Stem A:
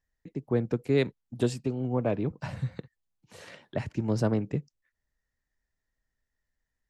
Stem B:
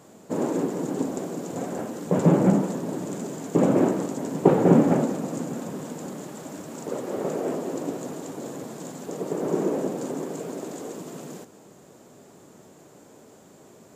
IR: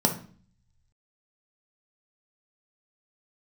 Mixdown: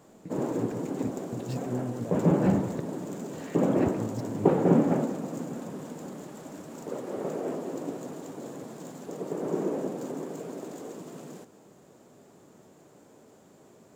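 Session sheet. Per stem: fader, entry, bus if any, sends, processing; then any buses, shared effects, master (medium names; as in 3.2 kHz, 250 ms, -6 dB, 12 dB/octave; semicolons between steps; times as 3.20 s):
-1.5 dB, 0.00 s, no send, compressor with a negative ratio -34 dBFS, ratio -1
-4.5 dB, 0.00 s, no send, treble shelf 3 kHz +11 dB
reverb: none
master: treble shelf 2.7 kHz -12 dB; decimation joined by straight lines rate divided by 2×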